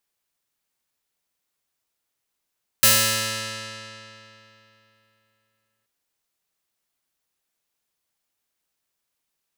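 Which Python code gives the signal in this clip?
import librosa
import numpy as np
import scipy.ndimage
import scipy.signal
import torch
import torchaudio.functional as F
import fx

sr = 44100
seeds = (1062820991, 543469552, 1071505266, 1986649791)

y = fx.pluck(sr, length_s=3.03, note=45, decay_s=3.14, pick=0.29, brightness='bright')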